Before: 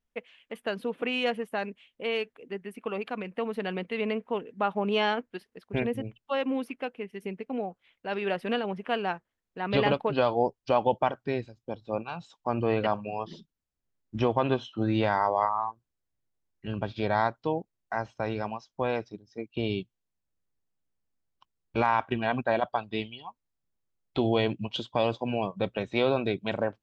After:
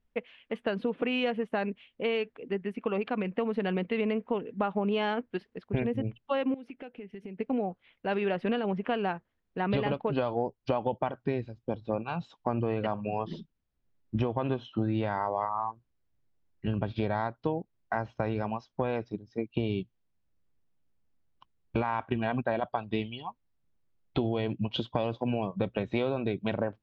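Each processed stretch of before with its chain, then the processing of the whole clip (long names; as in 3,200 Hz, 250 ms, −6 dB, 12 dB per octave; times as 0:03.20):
0:06.54–0:07.40: parametric band 1,100 Hz −12 dB 0.21 octaves + downward compressor 5 to 1, threshold −46 dBFS
whole clip: low-pass filter 3,800 Hz 12 dB per octave; low-shelf EQ 370 Hz +6.5 dB; downward compressor, threshold −28 dBFS; level +2.5 dB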